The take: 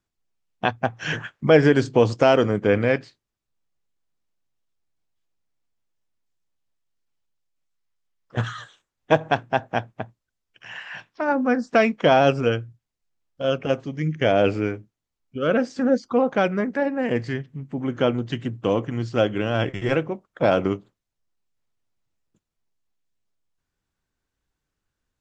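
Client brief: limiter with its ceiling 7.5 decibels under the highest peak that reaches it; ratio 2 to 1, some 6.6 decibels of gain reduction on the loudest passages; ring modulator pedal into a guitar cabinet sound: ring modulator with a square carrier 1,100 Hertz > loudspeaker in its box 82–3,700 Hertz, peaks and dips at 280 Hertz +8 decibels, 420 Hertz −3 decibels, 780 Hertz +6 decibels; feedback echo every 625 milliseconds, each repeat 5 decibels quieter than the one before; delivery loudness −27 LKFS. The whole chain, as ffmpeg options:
ffmpeg -i in.wav -af "acompressor=threshold=-23dB:ratio=2,alimiter=limit=-14.5dB:level=0:latency=1,aecho=1:1:625|1250|1875|2500|3125|3750|4375:0.562|0.315|0.176|0.0988|0.0553|0.031|0.0173,aeval=exprs='val(0)*sgn(sin(2*PI*1100*n/s))':channel_layout=same,highpass=82,equalizer=frequency=280:width_type=q:width=4:gain=8,equalizer=frequency=420:width_type=q:width=4:gain=-3,equalizer=frequency=780:width_type=q:width=4:gain=6,lowpass=frequency=3700:width=0.5412,lowpass=frequency=3700:width=1.3066,volume=-1dB" out.wav

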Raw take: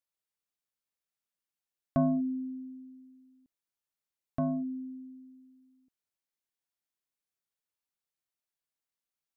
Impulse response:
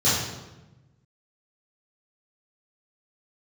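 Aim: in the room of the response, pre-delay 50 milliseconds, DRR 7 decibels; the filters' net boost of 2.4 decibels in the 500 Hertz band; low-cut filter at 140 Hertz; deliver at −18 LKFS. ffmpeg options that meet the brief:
-filter_complex "[0:a]highpass=140,equalizer=frequency=500:width_type=o:gain=4,asplit=2[link_01][link_02];[1:a]atrim=start_sample=2205,adelay=50[link_03];[link_02][link_03]afir=irnorm=-1:irlink=0,volume=-23.5dB[link_04];[link_01][link_04]amix=inputs=2:normalize=0,volume=13dB"

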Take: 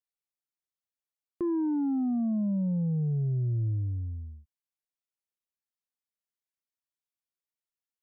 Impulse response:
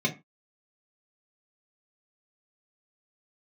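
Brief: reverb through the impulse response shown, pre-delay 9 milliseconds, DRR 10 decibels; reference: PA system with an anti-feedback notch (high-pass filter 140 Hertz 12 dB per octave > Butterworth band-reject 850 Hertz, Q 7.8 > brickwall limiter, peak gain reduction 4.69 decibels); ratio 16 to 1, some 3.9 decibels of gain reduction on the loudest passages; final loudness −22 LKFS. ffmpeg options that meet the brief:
-filter_complex "[0:a]acompressor=threshold=-30dB:ratio=16,asplit=2[link_01][link_02];[1:a]atrim=start_sample=2205,adelay=9[link_03];[link_02][link_03]afir=irnorm=-1:irlink=0,volume=-20dB[link_04];[link_01][link_04]amix=inputs=2:normalize=0,highpass=140,asuperstop=centerf=850:order=8:qfactor=7.8,volume=12.5dB,alimiter=limit=-15.5dB:level=0:latency=1"

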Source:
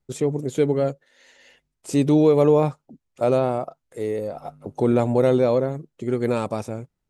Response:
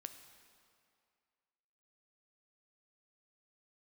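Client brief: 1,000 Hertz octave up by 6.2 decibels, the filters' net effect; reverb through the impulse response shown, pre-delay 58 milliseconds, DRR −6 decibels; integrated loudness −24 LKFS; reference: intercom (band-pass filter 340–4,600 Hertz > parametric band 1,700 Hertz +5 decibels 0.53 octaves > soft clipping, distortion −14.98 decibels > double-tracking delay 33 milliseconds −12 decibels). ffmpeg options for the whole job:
-filter_complex "[0:a]equalizer=frequency=1000:width_type=o:gain=8,asplit=2[link_01][link_02];[1:a]atrim=start_sample=2205,adelay=58[link_03];[link_02][link_03]afir=irnorm=-1:irlink=0,volume=10.5dB[link_04];[link_01][link_04]amix=inputs=2:normalize=0,highpass=340,lowpass=4600,equalizer=frequency=1700:width_type=o:width=0.53:gain=5,asoftclip=threshold=-6.5dB,asplit=2[link_05][link_06];[link_06]adelay=33,volume=-12dB[link_07];[link_05][link_07]amix=inputs=2:normalize=0,volume=-7.5dB"

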